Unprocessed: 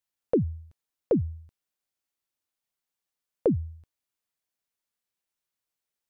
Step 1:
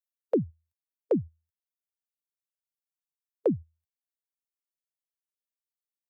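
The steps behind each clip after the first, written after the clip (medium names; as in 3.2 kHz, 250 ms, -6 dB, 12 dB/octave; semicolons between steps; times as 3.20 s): expander on every frequency bin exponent 1.5; reverb removal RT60 1.7 s; Bessel high-pass 160 Hz, order 8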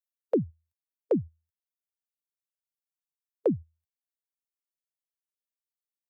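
no audible change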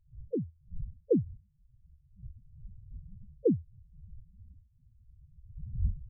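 wind noise 120 Hz -42 dBFS; level rider gain up to 10.5 dB; loudest bins only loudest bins 4; trim -8.5 dB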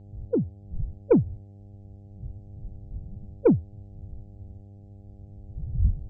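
Chebyshev shaper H 2 -20 dB, 5 -28 dB, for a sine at -15.5 dBFS; mains buzz 100 Hz, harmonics 8, -54 dBFS -9 dB/octave; trim +7.5 dB; MP3 32 kbps 44.1 kHz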